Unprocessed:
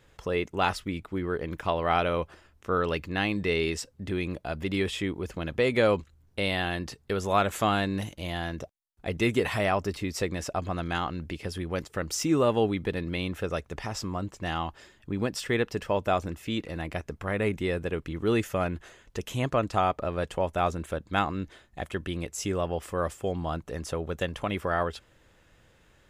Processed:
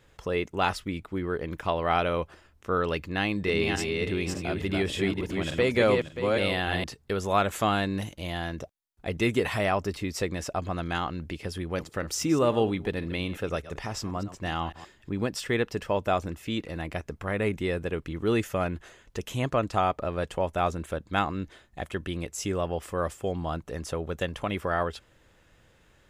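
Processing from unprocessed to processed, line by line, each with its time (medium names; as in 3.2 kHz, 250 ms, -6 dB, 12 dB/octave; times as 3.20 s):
3.18–6.84 s: backward echo that repeats 291 ms, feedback 41%, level -3 dB
11.65–15.25 s: chunks repeated in reverse 123 ms, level -14 dB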